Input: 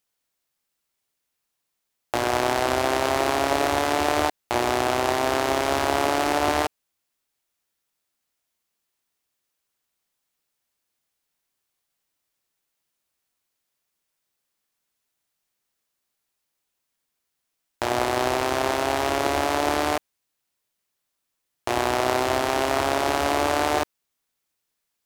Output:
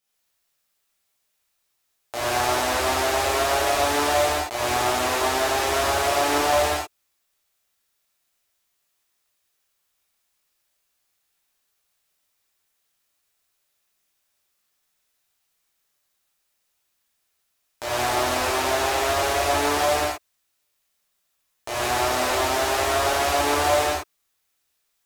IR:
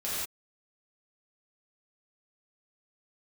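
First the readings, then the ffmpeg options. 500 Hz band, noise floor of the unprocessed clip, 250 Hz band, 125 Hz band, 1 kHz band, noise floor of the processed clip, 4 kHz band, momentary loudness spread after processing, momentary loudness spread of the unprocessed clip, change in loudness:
+0.5 dB, -80 dBFS, -3.5 dB, +0.5 dB, +1.0 dB, -73 dBFS, +3.5 dB, 7 LU, 4 LU, +1.5 dB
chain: -filter_complex "[0:a]equalizer=f=210:t=o:w=2.7:g=-5.5,acrossover=split=5100[a][b];[a]alimiter=limit=-14dB:level=0:latency=1:release=56[c];[c][b]amix=inputs=2:normalize=0[d];[1:a]atrim=start_sample=2205[e];[d][e]afir=irnorm=-1:irlink=0"

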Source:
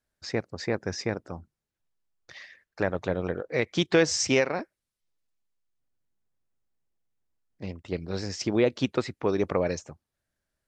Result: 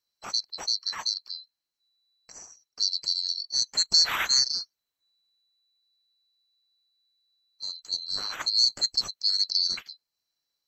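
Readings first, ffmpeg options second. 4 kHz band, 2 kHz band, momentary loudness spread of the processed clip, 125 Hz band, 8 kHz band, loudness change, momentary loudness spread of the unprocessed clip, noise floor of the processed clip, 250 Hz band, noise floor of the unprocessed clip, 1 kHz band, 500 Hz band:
+14.0 dB, -4.5 dB, 13 LU, under -20 dB, +5.0 dB, +3.5 dB, 18 LU, under -85 dBFS, under -25 dB, under -85 dBFS, -3.0 dB, -26.0 dB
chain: -af "afftfilt=real='real(if(lt(b,736),b+184*(1-2*mod(floor(b/184),2)),b),0)':imag='imag(if(lt(b,736),b+184*(1-2*mod(floor(b/184),2)),b),0)':win_size=2048:overlap=0.75"

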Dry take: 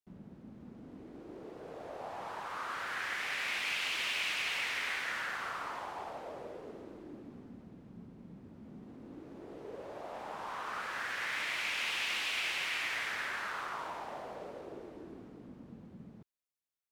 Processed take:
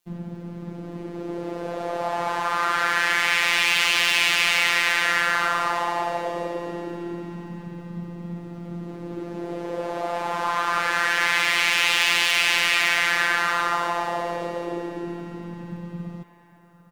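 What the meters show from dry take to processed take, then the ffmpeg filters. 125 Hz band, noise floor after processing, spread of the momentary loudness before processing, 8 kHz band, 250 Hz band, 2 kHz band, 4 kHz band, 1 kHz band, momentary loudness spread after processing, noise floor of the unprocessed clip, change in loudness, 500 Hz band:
+19.0 dB, -39 dBFS, 20 LU, +16.5 dB, +16.0 dB, +15.0 dB, +15.0 dB, +16.5 dB, 18 LU, -56 dBFS, +15.0 dB, +16.0 dB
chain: -filter_complex "[0:a]acontrast=38,apsyclip=26.5dB,afftfilt=real='hypot(re,im)*cos(PI*b)':imag='0':win_size=1024:overlap=0.75,asplit=2[a][b];[b]adelay=800,lowpass=f=4.8k:p=1,volume=-21dB,asplit=2[c][d];[d]adelay=800,lowpass=f=4.8k:p=1,volume=0.49,asplit=2[e][f];[f]adelay=800,lowpass=f=4.8k:p=1,volume=0.49,asplit=2[g][h];[h]adelay=800,lowpass=f=4.8k:p=1,volume=0.49[i];[c][e][g][i]amix=inputs=4:normalize=0[j];[a][j]amix=inputs=2:normalize=0,volume=-12dB"

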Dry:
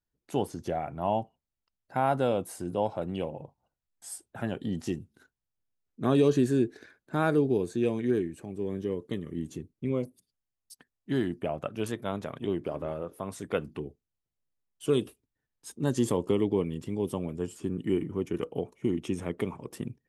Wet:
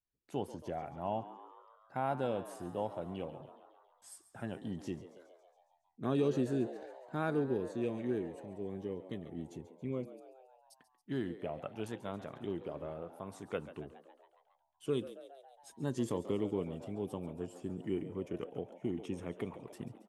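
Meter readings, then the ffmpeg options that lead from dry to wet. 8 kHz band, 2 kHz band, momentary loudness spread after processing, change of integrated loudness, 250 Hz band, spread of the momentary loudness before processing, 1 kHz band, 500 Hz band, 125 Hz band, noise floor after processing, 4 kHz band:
-12.0 dB, -8.5 dB, 14 LU, -8.5 dB, -8.5 dB, 12 LU, -8.0 dB, -8.0 dB, -8.5 dB, -74 dBFS, -9.5 dB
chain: -filter_complex "[0:a]highshelf=f=6.8k:g=-6,asplit=2[a][b];[b]asplit=7[c][d][e][f][g][h][i];[c]adelay=138,afreqshift=88,volume=-14.5dB[j];[d]adelay=276,afreqshift=176,volume=-18.7dB[k];[e]adelay=414,afreqshift=264,volume=-22.8dB[l];[f]adelay=552,afreqshift=352,volume=-27dB[m];[g]adelay=690,afreqshift=440,volume=-31.1dB[n];[h]adelay=828,afreqshift=528,volume=-35.3dB[o];[i]adelay=966,afreqshift=616,volume=-39.4dB[p];[j][k][l][m][n][o][p]amix=inputs=7:normalize=0[q];[a][q]amix=inputs=2:normalize=0,volume=-8.5dB"

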